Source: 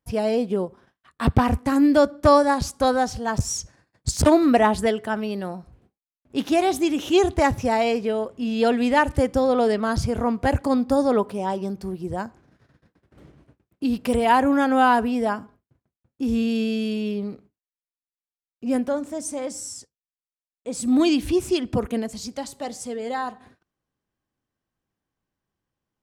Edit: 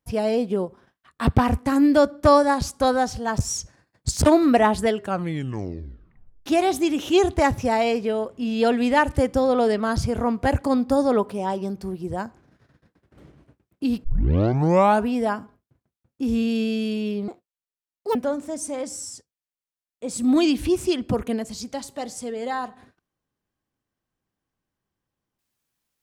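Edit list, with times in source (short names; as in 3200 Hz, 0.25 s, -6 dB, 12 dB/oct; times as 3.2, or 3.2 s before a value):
4.94 tape stop 1.52 s
14.04 tape start 1.02 s
17.28–18.79 speed 173%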